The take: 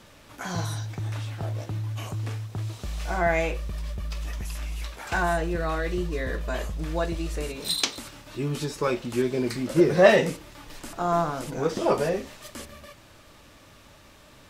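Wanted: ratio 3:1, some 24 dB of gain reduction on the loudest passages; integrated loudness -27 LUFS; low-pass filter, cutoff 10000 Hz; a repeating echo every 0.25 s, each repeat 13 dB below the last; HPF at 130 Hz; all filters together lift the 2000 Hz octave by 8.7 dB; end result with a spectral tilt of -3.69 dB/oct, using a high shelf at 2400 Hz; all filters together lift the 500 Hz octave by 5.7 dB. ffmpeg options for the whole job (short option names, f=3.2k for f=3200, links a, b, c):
-af "highpass=130,lowpass=10k,equalizer=f=500:t=o:g=6.5,equalizer=f=2k:t=o:g=7,highshelf=f=2.4k:g=7.5,acompressor=threshold=-38dB:ratio=3,aecho=1:1:250|500|750:0.224|0.0493|0.0108,volume=10.5dB"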